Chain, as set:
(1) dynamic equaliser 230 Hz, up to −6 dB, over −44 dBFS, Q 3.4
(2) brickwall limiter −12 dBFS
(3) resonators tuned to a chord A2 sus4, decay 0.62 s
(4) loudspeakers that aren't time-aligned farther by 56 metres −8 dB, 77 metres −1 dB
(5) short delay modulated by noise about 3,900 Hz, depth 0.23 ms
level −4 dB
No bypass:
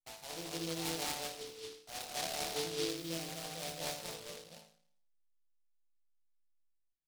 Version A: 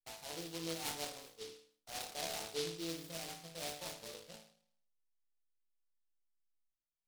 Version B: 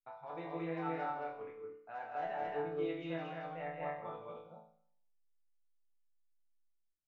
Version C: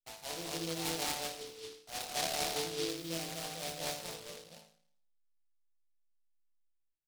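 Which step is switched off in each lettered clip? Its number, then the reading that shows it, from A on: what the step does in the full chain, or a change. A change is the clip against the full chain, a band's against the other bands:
4, change in integrated loudness −3.5 LU
5, 4 kHz band −20.0 dB
2, change in momentary loudness spread +1 LU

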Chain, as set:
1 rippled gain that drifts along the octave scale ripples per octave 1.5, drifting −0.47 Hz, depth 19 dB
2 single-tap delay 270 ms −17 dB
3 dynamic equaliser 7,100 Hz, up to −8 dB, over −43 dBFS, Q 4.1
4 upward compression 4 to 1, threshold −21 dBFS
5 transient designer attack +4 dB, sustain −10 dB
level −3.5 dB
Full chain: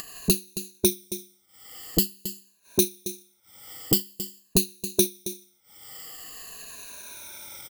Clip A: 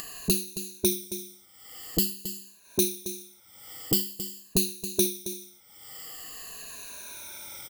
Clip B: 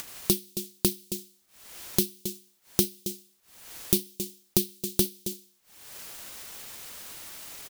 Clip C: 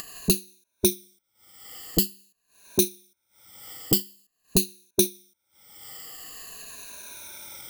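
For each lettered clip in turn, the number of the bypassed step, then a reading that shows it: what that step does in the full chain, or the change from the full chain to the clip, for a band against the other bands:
5, change in crest factor −2.0 dB
1, change in crest factor +3.0 dB
2, change in integrated loudness +1.0 LU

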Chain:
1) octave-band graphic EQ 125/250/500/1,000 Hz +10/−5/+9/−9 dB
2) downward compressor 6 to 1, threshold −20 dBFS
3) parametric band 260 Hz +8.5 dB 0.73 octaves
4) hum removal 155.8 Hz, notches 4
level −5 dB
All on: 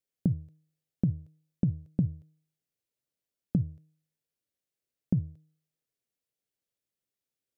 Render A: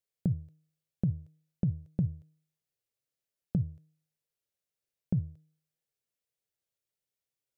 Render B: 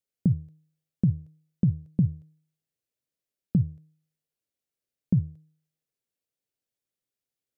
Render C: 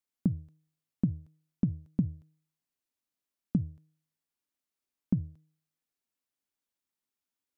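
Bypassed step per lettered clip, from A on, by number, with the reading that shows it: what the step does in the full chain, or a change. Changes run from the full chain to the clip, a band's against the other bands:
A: 3, change in integrated loudness −2.5 LU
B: 2, average gain reduction 2.5 dB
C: 1, change in momentary loudness spread +2 LU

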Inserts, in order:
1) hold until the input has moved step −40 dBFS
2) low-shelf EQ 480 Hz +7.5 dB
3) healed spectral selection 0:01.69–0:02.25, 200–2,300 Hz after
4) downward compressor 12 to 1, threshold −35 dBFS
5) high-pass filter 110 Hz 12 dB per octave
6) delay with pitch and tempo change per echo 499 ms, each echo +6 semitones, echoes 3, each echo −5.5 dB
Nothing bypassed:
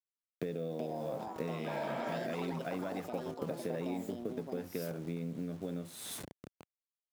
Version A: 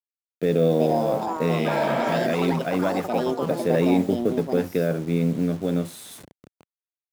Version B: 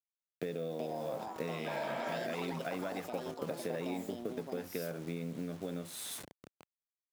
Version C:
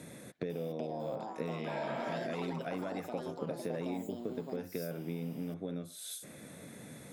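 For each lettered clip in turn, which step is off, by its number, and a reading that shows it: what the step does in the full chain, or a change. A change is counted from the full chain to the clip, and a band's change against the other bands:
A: 4, 8 kHz band −8.5 dB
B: 2, 125 Hz band −3.5 dB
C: 1, distortion level −18 dB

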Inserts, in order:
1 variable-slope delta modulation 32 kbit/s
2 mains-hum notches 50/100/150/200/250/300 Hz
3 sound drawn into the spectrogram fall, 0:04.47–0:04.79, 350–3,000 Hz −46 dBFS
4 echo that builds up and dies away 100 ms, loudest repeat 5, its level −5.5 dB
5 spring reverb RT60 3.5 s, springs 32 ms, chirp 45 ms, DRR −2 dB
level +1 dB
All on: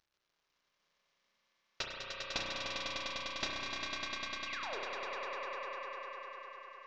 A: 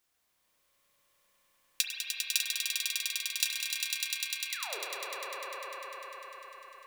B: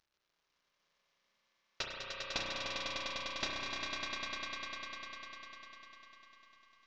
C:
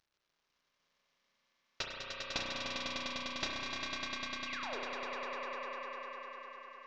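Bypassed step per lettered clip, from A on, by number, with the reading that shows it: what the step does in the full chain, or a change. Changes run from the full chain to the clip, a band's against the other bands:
1, 8 kHz band +16.5 dB
3, change in momentary loudness spread +9 LU
2, 250 Hz band +4.0 dB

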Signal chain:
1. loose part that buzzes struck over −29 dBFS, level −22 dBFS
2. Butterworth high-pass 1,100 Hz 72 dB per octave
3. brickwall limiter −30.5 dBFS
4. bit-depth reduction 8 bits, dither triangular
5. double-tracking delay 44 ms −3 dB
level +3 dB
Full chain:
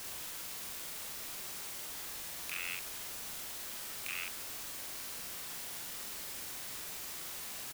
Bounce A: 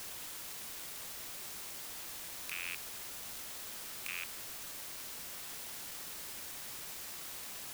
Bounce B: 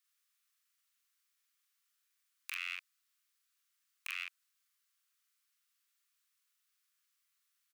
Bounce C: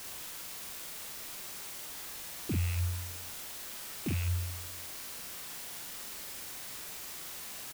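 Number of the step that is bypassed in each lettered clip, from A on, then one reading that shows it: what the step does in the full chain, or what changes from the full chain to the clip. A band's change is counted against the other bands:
5, change in integrated loudness −1.5 LU
4, 8 kHz band −11.5 dB
2, 125 Hz band +24.5 dB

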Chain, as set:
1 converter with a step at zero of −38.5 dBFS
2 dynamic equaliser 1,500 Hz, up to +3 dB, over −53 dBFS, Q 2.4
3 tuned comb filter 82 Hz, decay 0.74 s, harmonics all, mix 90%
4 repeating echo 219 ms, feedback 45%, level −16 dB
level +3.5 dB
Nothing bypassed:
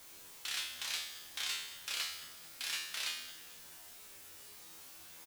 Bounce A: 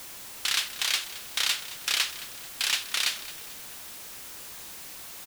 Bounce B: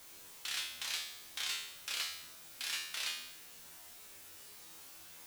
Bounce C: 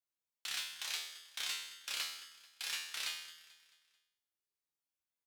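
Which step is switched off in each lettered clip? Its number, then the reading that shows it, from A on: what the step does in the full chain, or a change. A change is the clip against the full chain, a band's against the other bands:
3, change in integrated loudness +12.0 LU
4, echo-to-direct ratio −15.0 dB to none audible
1, distortion level −9 dB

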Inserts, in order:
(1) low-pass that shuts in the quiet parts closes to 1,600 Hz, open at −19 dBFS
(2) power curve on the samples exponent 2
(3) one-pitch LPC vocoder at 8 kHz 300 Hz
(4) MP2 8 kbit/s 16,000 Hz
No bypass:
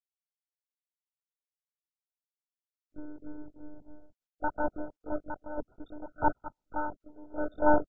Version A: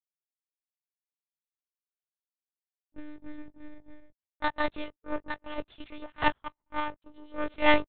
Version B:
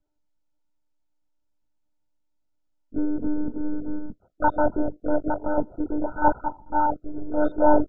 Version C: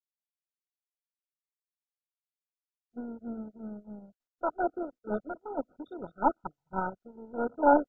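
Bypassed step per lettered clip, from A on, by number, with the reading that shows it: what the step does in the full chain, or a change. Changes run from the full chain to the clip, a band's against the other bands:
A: 4, change in crest factor +3.0 dB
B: 2, change in crest factor −5.0 dB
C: 3, 125 Hz band −3.5 dB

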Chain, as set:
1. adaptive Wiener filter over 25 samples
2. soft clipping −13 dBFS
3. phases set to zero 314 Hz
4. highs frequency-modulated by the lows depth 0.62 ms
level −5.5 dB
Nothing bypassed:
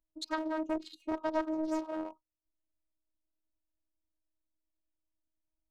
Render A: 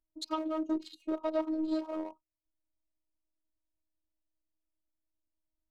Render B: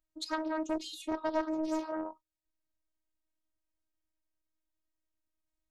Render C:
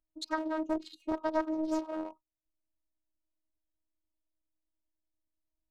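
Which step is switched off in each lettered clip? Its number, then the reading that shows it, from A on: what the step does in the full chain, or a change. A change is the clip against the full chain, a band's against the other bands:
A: 4, 2 kHz band −10.5 dB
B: 1, 8 kHz band +4.0 dB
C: 2, distortion level −20 dB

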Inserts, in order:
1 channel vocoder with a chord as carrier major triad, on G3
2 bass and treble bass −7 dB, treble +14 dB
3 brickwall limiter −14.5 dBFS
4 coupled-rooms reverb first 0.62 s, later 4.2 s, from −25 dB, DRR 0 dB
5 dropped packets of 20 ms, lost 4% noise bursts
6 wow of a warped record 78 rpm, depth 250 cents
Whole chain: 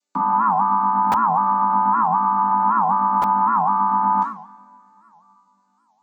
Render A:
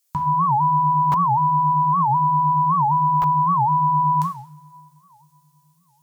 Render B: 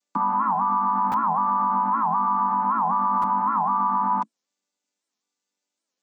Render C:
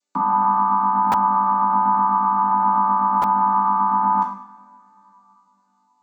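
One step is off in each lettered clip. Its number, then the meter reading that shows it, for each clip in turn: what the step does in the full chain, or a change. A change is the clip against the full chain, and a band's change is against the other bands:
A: 1, change in crest factor −3.0 dB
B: 4, change in crest factor −2.0 dB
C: 6, 500 Hz band −2.5 dB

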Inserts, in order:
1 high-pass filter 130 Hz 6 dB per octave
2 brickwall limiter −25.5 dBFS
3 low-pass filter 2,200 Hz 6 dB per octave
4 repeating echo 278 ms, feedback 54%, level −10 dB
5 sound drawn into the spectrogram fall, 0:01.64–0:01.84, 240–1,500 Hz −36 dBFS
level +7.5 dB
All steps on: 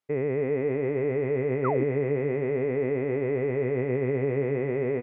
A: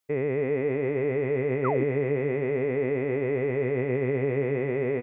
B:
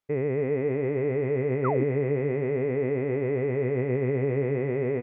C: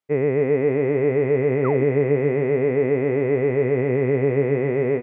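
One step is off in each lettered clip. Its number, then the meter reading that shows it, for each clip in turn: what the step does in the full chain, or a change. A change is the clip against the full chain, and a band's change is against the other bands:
3, 2 kHz band +2.5 dB
1, 125 Hz band +2.5 dB
2, average gain reduction 6.5 dB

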